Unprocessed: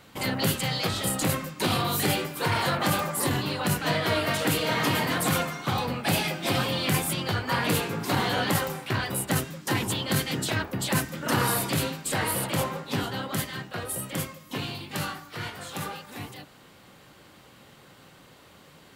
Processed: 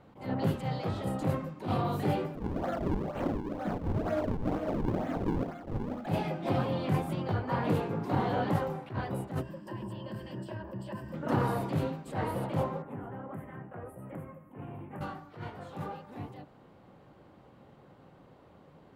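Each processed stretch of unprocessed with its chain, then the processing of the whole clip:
2.35–6.07 s: static phaser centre 650 Hz, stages 8 + decimation with a swept rate 40×, swing 160% 2.1 Hz
9.41–11.14 s: rippled EQ curve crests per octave 1.3, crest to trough 13 dB + compression 4:1, threshold -34 dBFS
12.82–15.01 s: Chebyshev band-stop 2–9.6 kHz + compression 3:1, threshold -36 dBFS
whole clip: FFT filter 790 Hz 0 dB, 1.6 kHz -10 dB, 8.7 kHz -24 dB; attacks held to a fixed rise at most 160 dB/s; trim -1.5 dB

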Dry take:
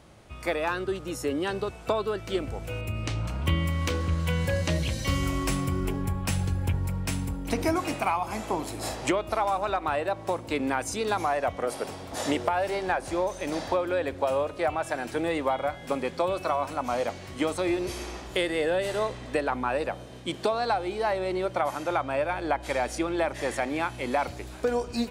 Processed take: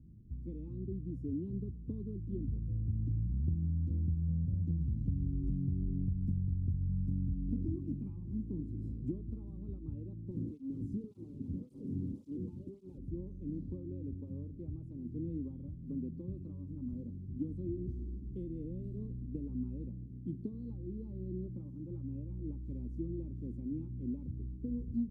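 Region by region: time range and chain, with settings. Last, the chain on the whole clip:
10.31–12.98 s: one-bit delta coder 64 kbps, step -20.5 dBFS + cancelling through-zero flanger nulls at 1.8 Hz, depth 1.9 ms
whole clip: inverse Chebyshev low-pass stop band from 640 Hz, stop band 50 dB; compression, threshold -31 dBFS; trim +1 dB

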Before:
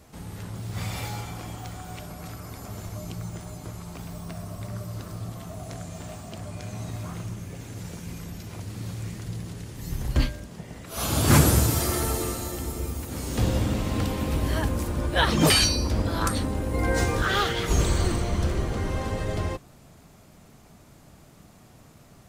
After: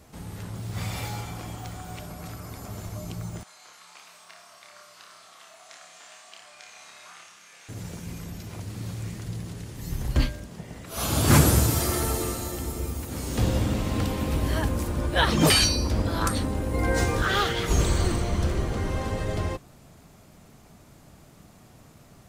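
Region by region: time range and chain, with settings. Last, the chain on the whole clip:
3.43–7.69 s: high-pass 1.4 kHz + distance through air 55 m + flutter echo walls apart 4.9 m, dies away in 0.45 s
whole clip: none

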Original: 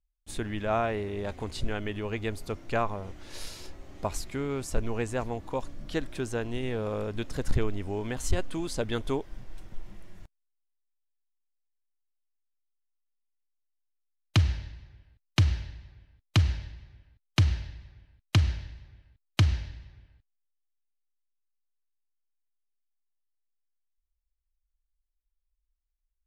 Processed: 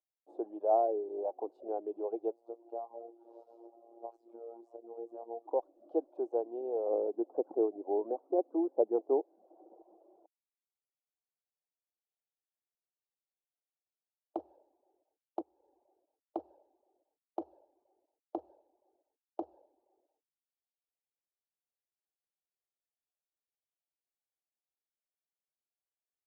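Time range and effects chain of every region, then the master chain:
2.31–5.47 s: doubling 30 ms -11.5 dB + compression 12:1, threshold -33 dBFS + robot voice 116 Hz
6.89–9.82 s: brick-wall FIR band-pass 160–2200 Hz + bass shelf 310 Hz +9.5 dB
15.41–15.81 s: band-stop 640 Hz, Q 5.2 + compression 2.5:1, threshold -37 dBFS
whole clip: reverb removal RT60 0.59 s; elliptic band-pass 330–790 Hz, stop band 50 dB; bass shelf 430 Hz -10.5 dB; trim +6.5 dB

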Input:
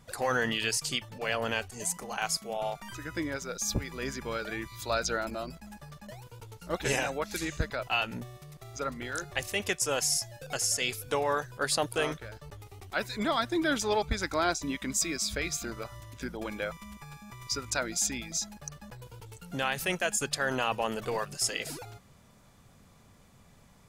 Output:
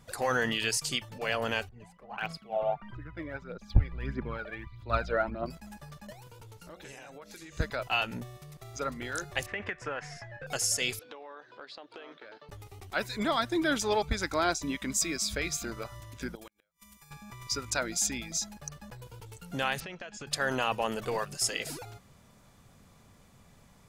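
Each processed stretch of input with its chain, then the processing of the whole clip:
1.69–5.46 s: distance through air 450 m + phaser 1.6 Hz, delay 1.9 ms, feedback 56% + three bands expanded up and down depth 100%
6.12–7.57 s: hum notches 60/120/180/240/300/360/420/480/540/600 Hz + compression, threshold -45 dBFS
9.46–10.47 s: resonant low-pass 1.8 kHz, resonance Q 3.1 + compression 12:1, threshold -30 dBFS
10.99–12.49 s: Chebyshev band-pass 260–4100 Hz, order 3 + compression 8:1, threshold -43 dBFS
16.35–17.11 s: pre-emphasis filter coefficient 0.8 + inverted gate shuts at -36 dBFS, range -37 dB
19.80–20.27 s: low-pass 4.9 kHz 24 dB/octave + compression, threshold -39 dBFS
whole clip: none

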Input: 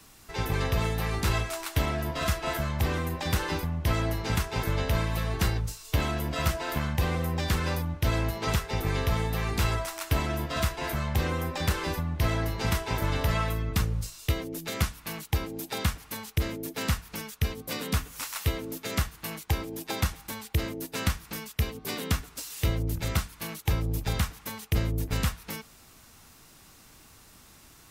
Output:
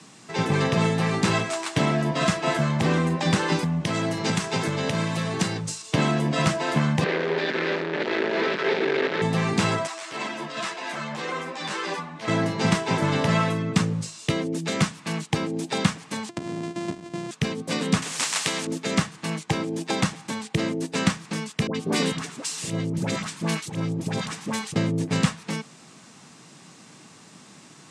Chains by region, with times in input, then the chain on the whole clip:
3.52–5.82 s: compression 3:1, threshold -27 dBFS + treble shelf 3.8 kHz +6.5 dB
7.04–9.22 s: one-bit comparator + cabinet simulation 390–3600 Hz, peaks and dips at 390 Hz +9 dB, 750 Hz -7 dB, 1.1 kHz -8 dB, 1.7 kHz +3 dB, 3 kHz -5 dB
9.87–12.28 s: frequency weighting A + transient shaper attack -11 dB, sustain +3 dB + three-phase chorus
16.29–17.31 s: sorted samples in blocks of 128 samples + bass shelf 470 Hz +6.5 dB + compression 4:1, threshold -36 dBFS
18.02–18.67 s: tilt shelf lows -6.5 dB, about 750 Hz + spectrum-flattening compressor 2:1
21.67–24.76 s: treble shelf 11 kHz +5.5 dB + compressor with a negative ratio -31 dBFS + phase dispersion highs, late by 77 ms, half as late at 1 kHz
whole clip: elliptic band-pass 160–8300 Hz, stop band 40 dB; bass shelf 250 Hz +10 dB; band-stop 1.4 kHz, Q 19; trim +6 dB

